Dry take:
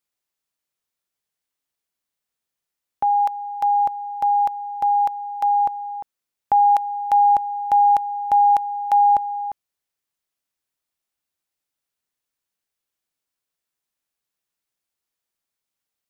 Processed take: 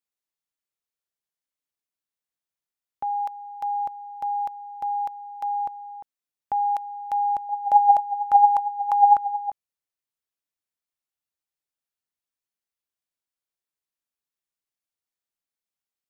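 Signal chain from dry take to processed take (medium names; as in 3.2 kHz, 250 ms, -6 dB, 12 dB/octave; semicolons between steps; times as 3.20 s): 7.49–9.50 s: sweeping bell 4.4 Hz 590–1600 Hz +13 dB; trim -8.5 dB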